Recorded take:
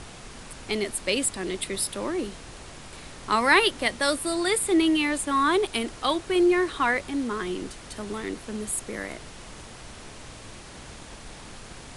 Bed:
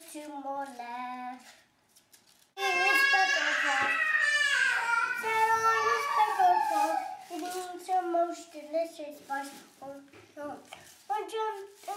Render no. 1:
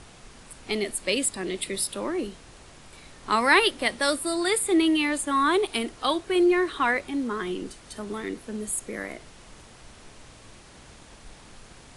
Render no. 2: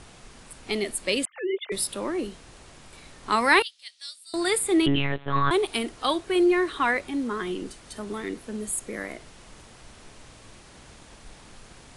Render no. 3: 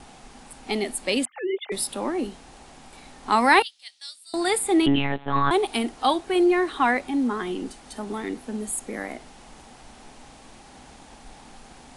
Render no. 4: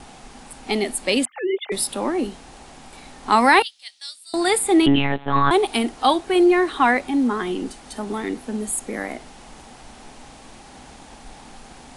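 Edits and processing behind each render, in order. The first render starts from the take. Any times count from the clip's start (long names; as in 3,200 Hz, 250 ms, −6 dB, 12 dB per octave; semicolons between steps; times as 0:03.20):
noise reduction from a noise print 6 dB
0:01.25–0:01.72: three sine waves on the formant tracks; 0:03.62–0:04.34: four-pole ladder band-pass 5,100 Hz, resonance 35%; 0:04.86–0:05.51: one-pitch LPC vocoder at 8 kHz 140 Hz
noise gate with hold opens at −44 dBFS; thirty-one-band graphic EQ 100 Hz −12 dB, 250 Hz +8 dB, 800 Hz +11 dB
level +4 dB; brickwall limiter −3 dBFS, peak gain reduction 3 dB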